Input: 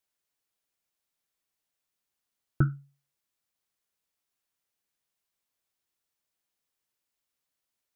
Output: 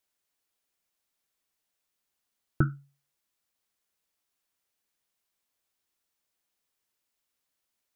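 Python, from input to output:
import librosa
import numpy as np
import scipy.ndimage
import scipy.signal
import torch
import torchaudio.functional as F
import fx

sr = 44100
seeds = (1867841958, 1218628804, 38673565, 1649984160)

y = fx.peak_eq(x, sr, hz=130.0, db=-7.0, octaves=0.31)
y = y * librosa.db_to_amplitude(2.5)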